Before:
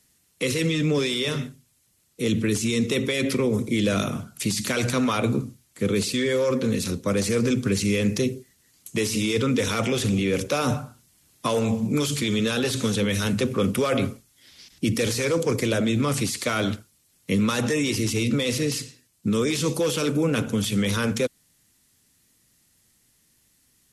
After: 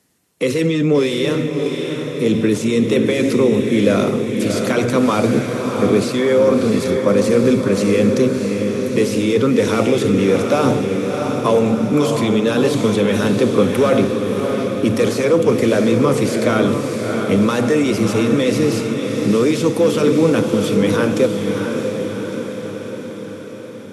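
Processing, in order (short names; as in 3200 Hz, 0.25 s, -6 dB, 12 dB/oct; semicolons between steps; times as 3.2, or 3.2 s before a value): HPF 410 Hz 6 dB/oct; tilt shelf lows +8 dB, about 1400 Hz; on a send: diffused feedback echo 0.666 s, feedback 61%, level -5 dB; on the sum: gain +5.5 dB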